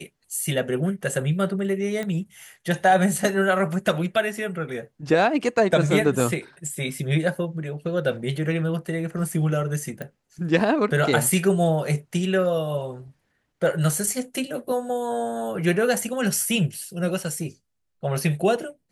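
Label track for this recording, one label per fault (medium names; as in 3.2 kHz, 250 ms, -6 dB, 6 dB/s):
2.030000	2.030000	pop -17 dBFS
6.200000	6.200000	dropout 2.3 ms
10.020000	10.020000	pop -19 dBFS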